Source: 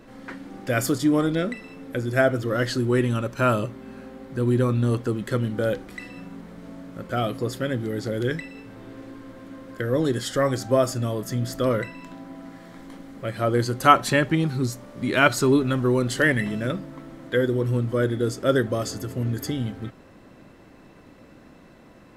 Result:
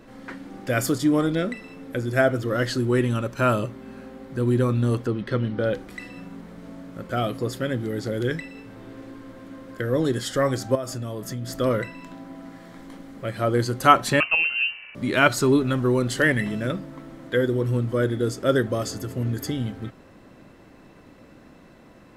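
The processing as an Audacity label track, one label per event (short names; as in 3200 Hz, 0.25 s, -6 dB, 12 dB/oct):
5.070000	5.740000	polynomial smoothing over 15 samples
10.750000	11.490000	compressor 4:1, threshold -28 dBFS
14.200000	14.950000	inverted band carrier 2900 Hz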